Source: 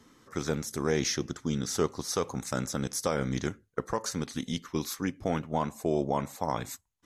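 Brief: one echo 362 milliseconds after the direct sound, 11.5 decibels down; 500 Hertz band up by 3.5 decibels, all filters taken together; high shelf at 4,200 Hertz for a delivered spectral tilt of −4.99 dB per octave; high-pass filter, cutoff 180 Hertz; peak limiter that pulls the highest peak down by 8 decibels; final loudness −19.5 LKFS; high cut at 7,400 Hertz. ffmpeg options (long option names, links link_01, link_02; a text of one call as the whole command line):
ffmpeg -i in.wav -af "highpass=180,lowpass=7400,equalizer=frequency=500:width_type=o:gain=4.5,highshelf=frequency=4200:gain=-8,alimiter=limit=-19.5dB:level=0:latency=1,aecho=1:1:362:0.266,volume=14.5dB" out.wav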